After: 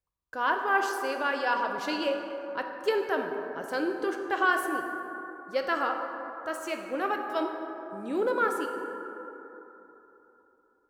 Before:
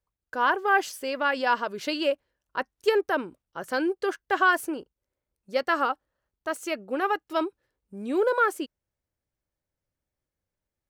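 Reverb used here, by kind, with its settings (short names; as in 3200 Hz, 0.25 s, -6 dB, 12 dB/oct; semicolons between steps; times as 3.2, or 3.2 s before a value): plate-style reverb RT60 3.5 s, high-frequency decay 0.35×, DRR 3 dB; gain -4.5 dB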